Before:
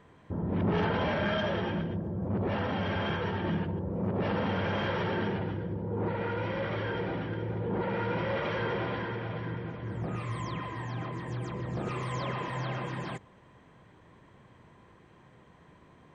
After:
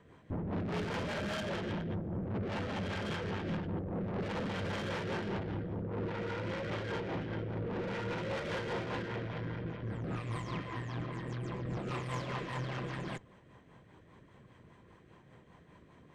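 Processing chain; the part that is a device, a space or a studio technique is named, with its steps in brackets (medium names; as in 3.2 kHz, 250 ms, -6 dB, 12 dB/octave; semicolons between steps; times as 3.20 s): overdriven rotary cabinet (valve stage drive 36 dB, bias 0.7; rotary cabinet horn 5 Hz); trim +4 dB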